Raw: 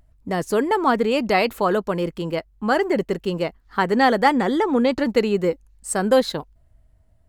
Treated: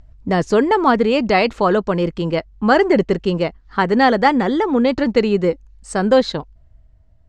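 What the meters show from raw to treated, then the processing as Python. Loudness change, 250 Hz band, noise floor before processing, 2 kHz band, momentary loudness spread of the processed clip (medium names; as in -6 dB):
+4.0 dB, +4.5 dB, -58 dBFS, +3.5 dB, 8 LU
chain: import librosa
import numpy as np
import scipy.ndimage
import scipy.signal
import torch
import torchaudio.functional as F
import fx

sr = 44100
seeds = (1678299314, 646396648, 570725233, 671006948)

y = scipy.signal.sosfilt(scipy.signal.butter(4, 6600.0, 'lowpass', fs=sr, output='sos'), x)
y = fx.low_shelf(y, sr, hz=140.0, db=6.0)
y = fx.rider(y, sr, range_db=10, speed_s=2.0)
y = y * librosa.db_to_amplitude(2.5)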